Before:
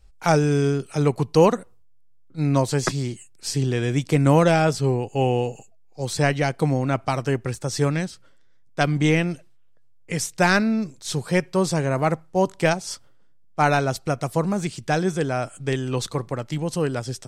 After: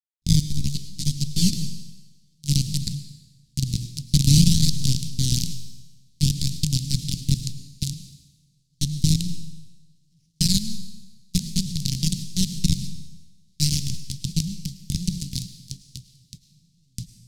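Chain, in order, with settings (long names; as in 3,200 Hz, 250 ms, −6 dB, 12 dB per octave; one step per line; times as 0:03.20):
delay that plays each chunk backwards 617 ms, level −11 dB
sample-and-hold swept by an LFO 22×, swing 100% 0.56 Hz
pitch vibrato 0.46 Hz 19 cents
feedback delay with all-pass diffusion 456 ms, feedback 80%, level −12 dB
log-companded quantiser 2 bits
low-pass filter 7,900 Hz 12 dB per octave
noise gate −23 dBFS, range −40 dB
Chebyshev band-stop filter 180–4,300 Hz, order 3
on a send at −12.5 dB: convolution reverb RT60 1.1 s, pre-delay 65 ms
0:00.50–0:01.53: on the sum: string-ensemble chorus
level −1 dB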